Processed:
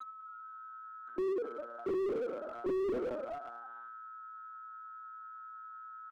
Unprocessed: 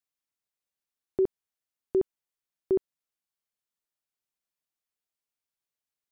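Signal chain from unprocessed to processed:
spectrum averaged block by block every 100 ms
0:01.20–0:02.01: gate with flip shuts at −26 dBFS, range −24 dB
flanger 0.91 Hz, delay 0.7 ms, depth 2.5 ms, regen −58%
in parallel at +0.5 dB: brickwall limiter −37 dBFS, peak gain reduction 11 dB
on the sum: steady tone 1,300 Hz −51 dBFS
on a send: echo with shifted repeats 201 ms, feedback 45%, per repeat +110 Hz, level −13 dB
on the sum: rectangular room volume 200 cubic metres, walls mixed, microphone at 1 metre
linear-prediction vocoder at 8 kHz pitch kept
Butterworth high-pass 240 Hz 48 dB per octave
slew-rate limiting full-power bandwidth 3.5 Hz
level +9.5 dB

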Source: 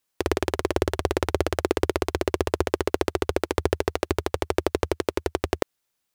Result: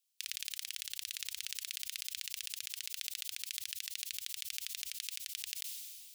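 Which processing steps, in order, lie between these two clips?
inverse Chebyshev high-pass filter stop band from 820 Hz, stop band 60 dB
level that may fall only so fast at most 29 dB per second
level −3 dB

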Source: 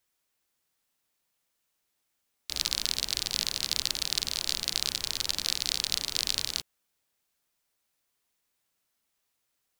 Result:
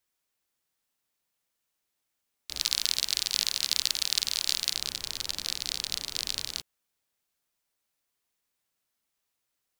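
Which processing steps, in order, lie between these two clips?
0:02.61–0:04.75: tilt shelving filter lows −5.5 dB, about 810 Hz
level −3 dB

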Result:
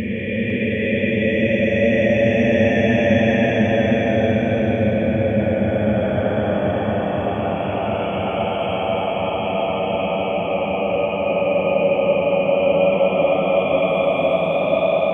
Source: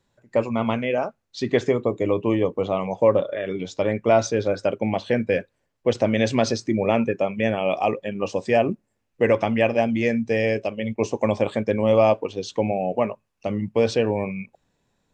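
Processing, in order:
extreme stretch with random phases 43×, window 0.05 s, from 0:07.39
feedback echo with a low-pass in the loop 503 ms, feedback 83%, low-pass 1,100 Hz, level −6 dB
level +2 dB

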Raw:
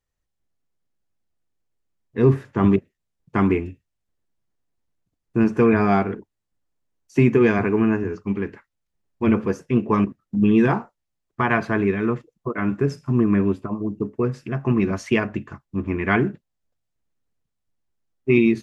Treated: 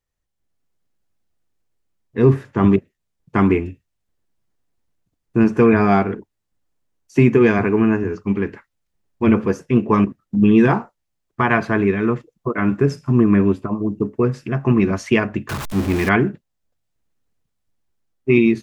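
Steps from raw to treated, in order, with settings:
0:15.49–0:16.09: converter with a step at zero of −25 dBFS
automatic gain control gain up to 5 dB

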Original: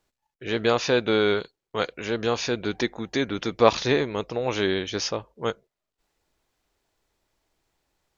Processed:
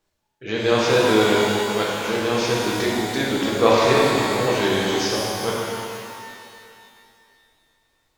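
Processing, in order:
reverb with rising layers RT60 2.4 s, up +12 semitones, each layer −8 dB, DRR −5 dB
level −1.5 dB

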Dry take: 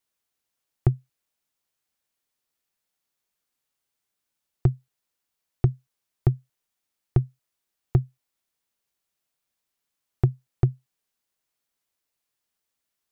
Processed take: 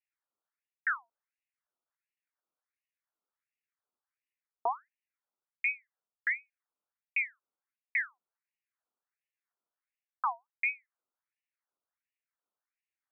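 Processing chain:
Chebyshev low-pass filter 600 Hz, order 6
reversed playback
downward compressor 6 to 1, threshold −29 dBFS, peak gain reduction 14.5 dB
reversed playback
ring modulator whose carrier an LFO sweeps 1,600 Hz, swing 50%, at 1.4 Hz
level +2.5 dB

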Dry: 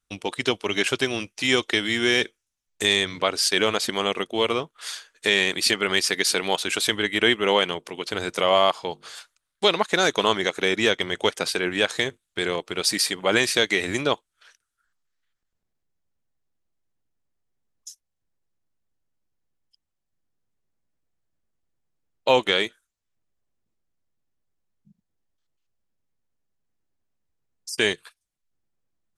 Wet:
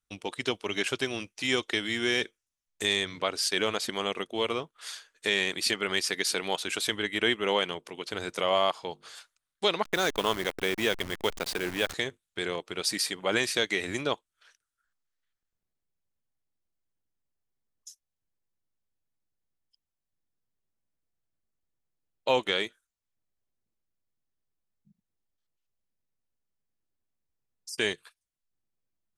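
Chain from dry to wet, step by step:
0:09.84–0:11.94: hold until the input has moved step −27 dBFS
level −6.5 dB

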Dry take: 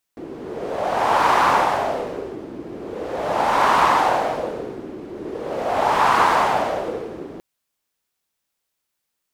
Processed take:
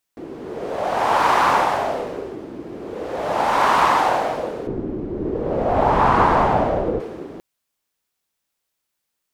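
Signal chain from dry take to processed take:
0:04.67–0:07.00: spectral tilt −4 dB per octave

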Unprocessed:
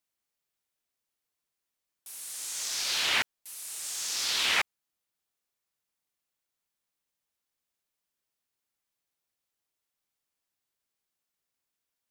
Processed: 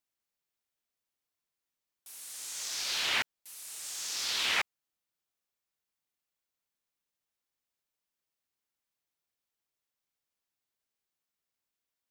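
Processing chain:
parametric band 10,000 Hz −2.5 dB
level −3 dB

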